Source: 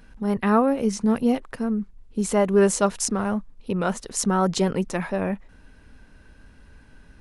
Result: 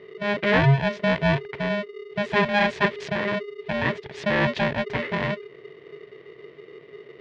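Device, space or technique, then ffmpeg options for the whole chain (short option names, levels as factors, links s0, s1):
ring modulator pedal into a guitar cabinet: -af "aeval=exprs='val(0)*sgn(sin(2*PI*410*n/s))':c=same,highpass=89,equalizer=f=140:t=q:w=4:g=8,equalizer=f=210:t=q:w=4:g=-4,equalizer=f=420:t=q:w=4:g=7,equalizer=f=790:t=q:w=4:g=-6,equalizer=f=1300:t=q:w=4:g=-9,equalizer=f=1900:t=q:w=4:g=7,lowpass=f=3500:w=0.5412,lowpass=f=3500:w=1.3066"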